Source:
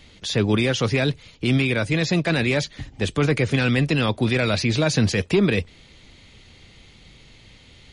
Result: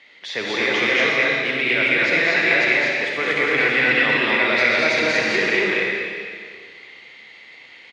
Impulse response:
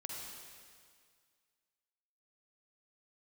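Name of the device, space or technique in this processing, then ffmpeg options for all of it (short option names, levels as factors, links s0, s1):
station announcement: -filter_complex "[0:a]highpass=490,lowpass=3800,equalizer=f=2000:t=o:w=0.36:g=12,aecho=1:1:207|239.1:0.708|0.891[s0];[1:a]atrim=start_sample=2205[s1];[s0][s1]afir=irnorm=-1:irlink=0,volume=1.41"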